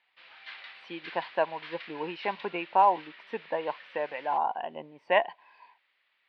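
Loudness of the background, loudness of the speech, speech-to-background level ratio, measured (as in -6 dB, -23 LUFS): -46.5 LUFS, -30.5 LUFS, 16.0 dB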